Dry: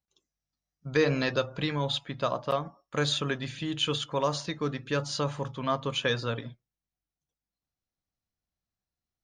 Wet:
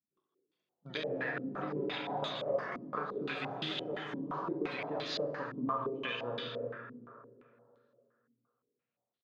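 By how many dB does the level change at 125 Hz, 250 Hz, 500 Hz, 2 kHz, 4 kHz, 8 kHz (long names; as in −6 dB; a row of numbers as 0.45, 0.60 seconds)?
−14.0 dB, −6.0 dB, −6.5 dB, −6.0 dB, −9.5 dB, below −20 dB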